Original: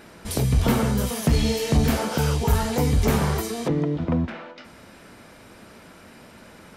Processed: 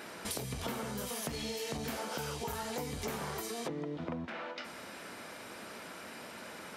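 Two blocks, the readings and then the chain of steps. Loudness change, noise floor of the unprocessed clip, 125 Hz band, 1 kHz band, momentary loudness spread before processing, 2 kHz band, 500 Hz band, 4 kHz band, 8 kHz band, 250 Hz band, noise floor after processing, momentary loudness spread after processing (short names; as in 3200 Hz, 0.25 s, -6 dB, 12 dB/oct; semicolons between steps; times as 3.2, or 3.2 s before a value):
-16.5 dB, -48 dBFS, -22.0 dB, -11.0 dB, 5 LU, -9.0 dB, -13.0 dB, -9.5 dB, -9.0 dB, -17.0 dB, -48 dBFS, 8 LU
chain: HPF 440 Hz 6 dB/oct; compressor 6:1, threshold -39 dBFS, peak gain reduction 17 dB; gain +2.5 dB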